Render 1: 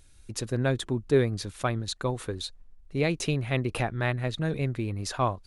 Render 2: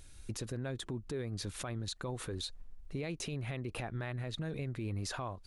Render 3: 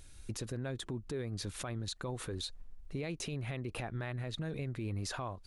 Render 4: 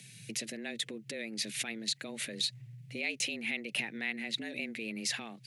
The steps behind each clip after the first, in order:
downward compressor 12 to 1, threshold −34 dBFS, peak gain reduction 17.5 dB; brickwall limiter −32.5 dBFS, peak gain reduction 11 dB; level +2.5 dB
no processing that can be heard
frequency shifter +110 Hz; high shelf with overshoot 1,600 Hz +10.5 dB, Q 3; level −3.5 dB

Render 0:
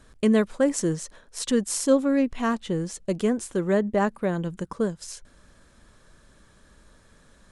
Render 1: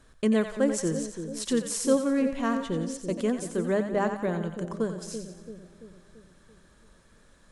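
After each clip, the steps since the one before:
mains-hum notches 50/100/150/200 Hz
echo with a time of its own for lows and highs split 550 Hz, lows 337 ms, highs 89 ms, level −8 dB
level −3.5 dB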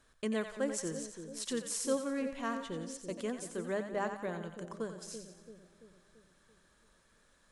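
low-shelf EQ 460 Hz −8 dB
level −5.5 dB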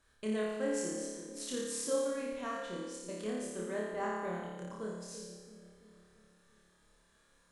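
flutter between parallel walls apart 4.8 metres, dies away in 1 s
level −5.5 dB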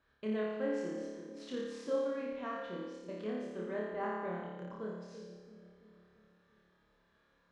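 high-pass filter 80 Hz 6 dB per octave
high-frequency loss of the air 240 metres

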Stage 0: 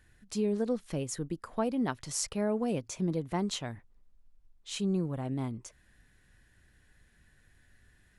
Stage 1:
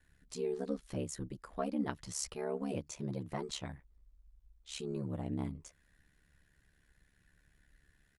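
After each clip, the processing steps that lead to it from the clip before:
comb filter 7.4 ms, depth 77%
ring modulation 35 Hz
level −5 dB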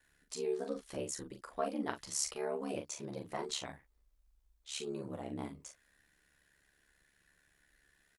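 bass and treble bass −13 dB, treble +2 dB
double-tracking delay 40 ms −7 dB
level +1.5 dB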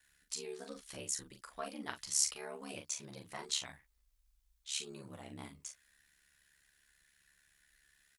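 guitar amp tone stack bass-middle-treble 5-5-5
level +10.5 dB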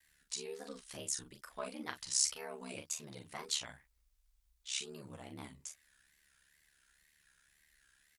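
tape wow and flutter 130 cents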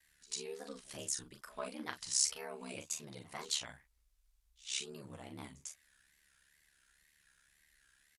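echo ahead of the sound 98 ms −21 dB
downsampling to 32,000 Hz

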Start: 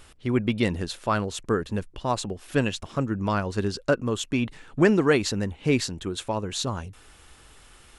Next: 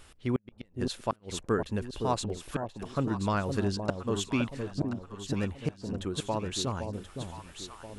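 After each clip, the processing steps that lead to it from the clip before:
gate with flip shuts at −12 dBFS, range −40 dB
delay that swaps between a low-pass and a high-pass 515 ms, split 820 Hz, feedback 63%, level −5.5 dB
level −3.5 dB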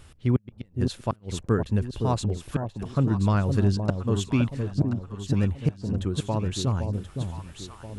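parametric band 99 Hz +11.5 dB 2.4 octaves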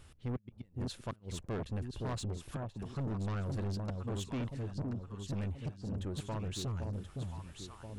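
soft clipping −26 dBFS, distortion −7 dB
level −7 dB

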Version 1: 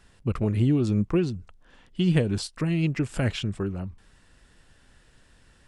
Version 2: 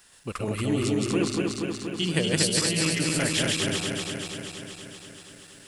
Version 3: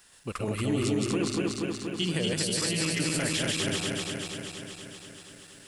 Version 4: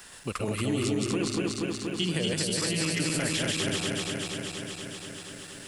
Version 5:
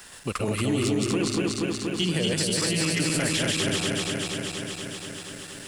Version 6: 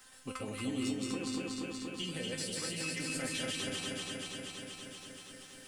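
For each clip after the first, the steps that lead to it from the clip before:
feedback delay that plays each chunk backwards 119 ms, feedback 83%, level −1 dB; RIAA equalisation recording
brickwall limiter −16.5 dBFS, peak gain reduction 9 dB; level −1.5 dB
multiband upward and downward compressor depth 40%
leveller curve on the samples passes 1
tuned comb filter 260 Hz, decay 0.24 s, harmonics all, mix 90%

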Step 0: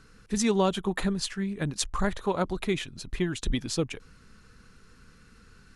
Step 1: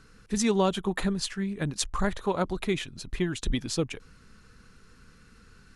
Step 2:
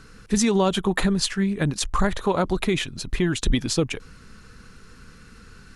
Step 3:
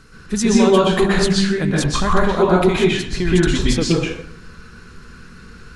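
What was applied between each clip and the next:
no processing that can be heard
brickwall limiter −19.5 dBFS, peak gain reduction 9 dB; level +8 dB
convolution reverb RT60 0.65 s, pre-delay 112 ms, DRR −6 dB

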